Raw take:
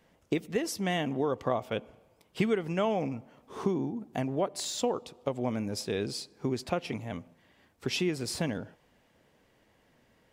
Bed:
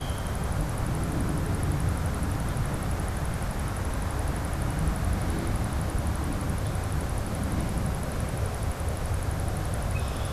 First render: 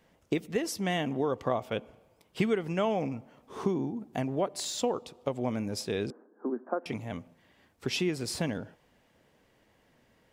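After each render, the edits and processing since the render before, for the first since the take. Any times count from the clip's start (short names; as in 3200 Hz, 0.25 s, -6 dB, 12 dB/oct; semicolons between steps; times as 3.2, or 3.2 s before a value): 6.1–6.86 Chebyshev band-pass 220–1600 Hz, order 5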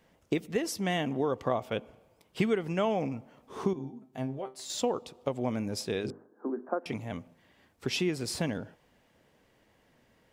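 3.73–4.7 resonator 130 Hz, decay 0.19 s, mix 90%; 5.93–6.69 notches 50/100/150/200/250/300/350/400/450 Hz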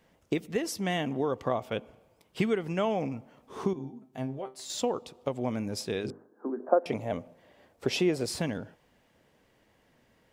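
6.6–8.26 bell 570 Hz +11 dB 1.1 oct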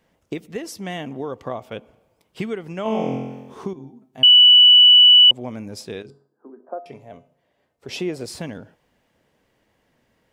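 2.83–3.54 flutter echo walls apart 3.9 m, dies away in 1.1 s; 4.23–5.31 bleep 2960 Hz -6.5 dBFS; 6.02–7.89 resonator 140 Hz, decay 0.44 s, harmonics odd, mix 70%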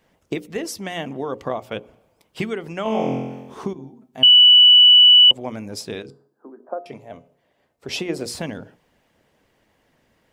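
notches 60/120/180/240/300/360/420/480/540 Hz; harmonic-percussive split percussive +5 dB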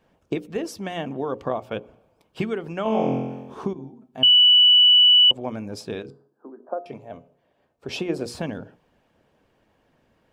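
high shelf 3700 Hz -10 dB; notch 2000 Hz, Q 8.6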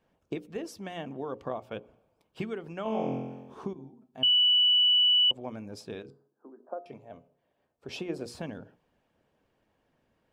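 gain -8.5 dB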